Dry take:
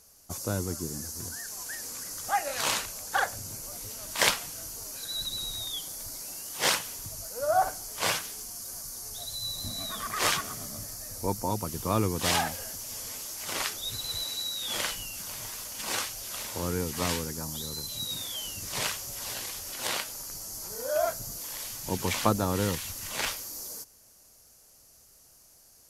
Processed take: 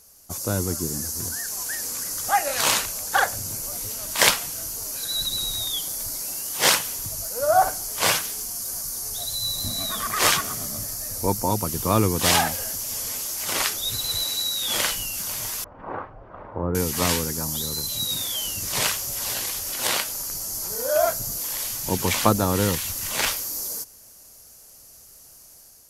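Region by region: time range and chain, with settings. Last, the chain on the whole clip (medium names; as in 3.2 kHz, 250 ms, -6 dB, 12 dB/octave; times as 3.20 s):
15.64–16.75 s: low-pass 1.2 kHz 24 dB/octave + band-stop 220 Hz, Q 6.6
whole clip: treble shelf 11 kHz +7 dB; level rider gain up to 4 dB; trim +2.5 dB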